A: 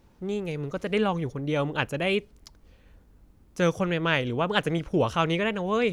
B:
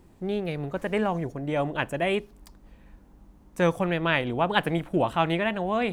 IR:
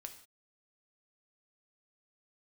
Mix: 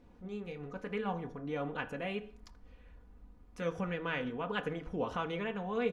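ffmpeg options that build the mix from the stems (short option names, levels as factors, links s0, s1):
-filter_complex "[0:a]volume=0.708,asplit=2[s0][s1];[s1]volume=0.316[s2];[1:a]acompressor=threshold=0.0224:ratio=6,flanger=delay=22.5:depth=4.1:speed=1.1,volume=-1,volume=0.398,asplit=2[s3][s4];[s4]apad=whole_len=261278[s5];[s0][s5]sidechaincompress=threshold=0.00224:ratio=8:attack=7.2:release=159[s6];[2:a]atrim=start_sample=2205[s7];[s2][s7]afir=irnorm=-1:irlink=0[s8];[s6][s3][s8]amix=inputs=3:normalize=0,lowpass=f=1800:p=1,aecho=1:1:4.1:0.58,bandreject=f=53.72:t=h:w=4,bandreject=f=107.44:t=h:w=4,bandreject=f=161.16:t=h:w=4,bandreject=f=214.88:t=h:w=4,bandreject=f=268.6:t=h:w=4,bandreject=f=322.32:t=h:w=4,bandreject=f=376.04:t=h:w=4,bandreject=f=429.76:t=h:w=4,bandreject=f=483.48:t=h:w=4,bandreject=f=537.2:t=h:w=4,bandreject=f=590.92:t=h:w=4,bandreject=f=644.64:t=h:w=4,bandreject=f=698.36:t=h:w=4,bandreject=f=752.08:t=h:w=4,bandreject=f=805.8:t=h:w=4,bandreject=f=859.52:t=h:w=4,bandreject=f=913.24:t=h:w=4,bandreject=f=966.96:t=h:w=4,bandreject=f=1020.68:t=h:w=4,bandreject=f=1074.4:t=h:w=4,bandreject=f=1128.12:t=h:w=4,bandreject=f=1181.84:t=h:w=4,bandreject=f=1235.56:t=h:w=4,bandreject=f=1289.28:t=h:w=4,bandreject=f=1343:t=h:w=4,bandreject=f=1396.72:t=h:w=4,bandreject=f=1450.44:t=h:w=4,bandreject=f=1504.16:t=h:w=4,bandreject=f=1557.88:t=h:w=4,bandreject=f=1611.6:t=h:w=4,bandreject=f=1665.32:t=h:w=4,bandreject=f=1719.04:t=h:w=4,bandreject=f=1772.76:t=h:w=4,bandreject=f=1826.48:t=h:w=4"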